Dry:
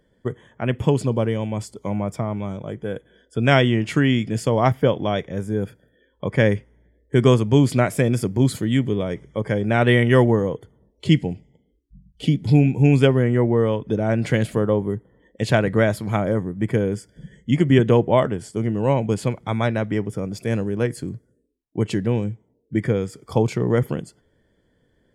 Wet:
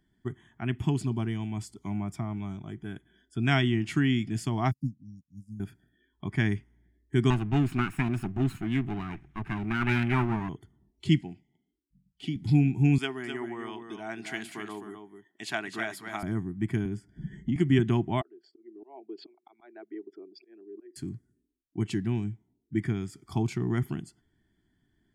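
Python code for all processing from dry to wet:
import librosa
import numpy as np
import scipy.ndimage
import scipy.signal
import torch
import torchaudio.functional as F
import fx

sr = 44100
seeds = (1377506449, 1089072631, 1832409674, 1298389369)

y = fx.chain(x, sr, fx.brickwall_bandstop(low_hz=290.0, high_hz=4600.0),
    fx.upward_expand(threshold_db=-41.0, expansion=2.5), at=(4.71, 5.6))
y = fx.chain(y, sr, fx.lower_of_two(delay_ms=0.75),
    fx.high_shelf_res(hz=3300.0, db=-9.0, q=1.5), at=(7.3, 10.49))
y = fx.chain(y, sr, fx.highpass(hz=390.0, slope=6),
    fx.high_shelf(hz=5700.0, db=-9.0), at=(11.21, 12.36))
y = fx.chain(y, sr, fx.highpass(hz=470.0, slope=12),
    fx.echo_single(ms=257, db=-7.5), at=(12.98, 16.23))
y = fx.chain(y, sr, fx.high_shelf(hz=2300.0, db=-12.0),
    fx.band_squash(depth_pct=100), at=(16.85, 17.56))
y = fx.chain(y, sr, fx.envelope_sharpen(power=2.0),
    fx.cheby1_bandpass(low_hz=360.0, high_hz=4500.0, order=4),
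    fx.auto_swell(attack_ms=341.0), at=(18.21, 20.96))
y = scipy.signal.sosfilt(scipy.signal.cheby1(2, 1.0, [360.0, 730.0], 'bandstop', fs=sr, output='sos'), y)
y = fx.peak_eq(y, sr, hz=930.0, db=-5.0, octaves=0.88)
y = y * librosa.db_to_amplitude(-6.0)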